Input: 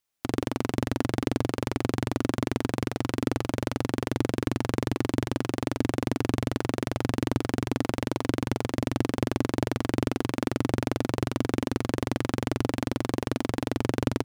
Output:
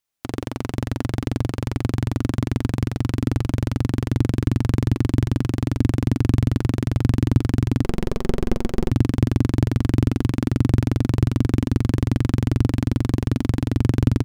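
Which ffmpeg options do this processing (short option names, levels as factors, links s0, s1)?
-filter_complex "[0:a]asubboost=boost=6:cutoff=210,asettb=1/sr,asplit=3[s0][s1][s2];[s0]atrim=end=7.844[s3];[s1]atrim=start=7.84:end=8.91,asetpts=PTS-STARTPTS,afade=t=in:d=0.004:c=qsin,afade=t=out:st=1.066:d=0.004:c=qsin,aeval=exprs='abs(val(0))':c=same[s4];[s2]atrim=start=8.906[s5];[s3][s4]acrossfade=d=0.004:c1=hsin:c2=qsin[s6];[s6][s5]acrossfade=d=0.004:c1=qsin:c2=hsin"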